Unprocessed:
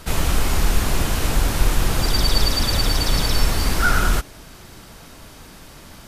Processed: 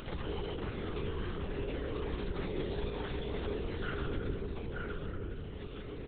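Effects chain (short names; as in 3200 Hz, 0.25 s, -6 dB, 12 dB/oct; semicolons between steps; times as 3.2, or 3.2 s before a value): low shelf 120 Hz +7.5 dB; resonator 160 Hz, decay 0.92 s, harmonics odd, mix 100%; echo 0.92 s -6.5 dB; half-wave rectifier; in parallel at 0 dB: compressor, threshold -53 dBFS, peak gain reduction 17 dB; on the sum: LPC vocoder at 8 kHz whisper; on a send at -1 dB: synth low-pass 430 Hz, resonance Q 4.9 + reverb RT60 1.2 s, pre-delay 0.118 s; on the sum: upward compressor, threshold -32 dBFS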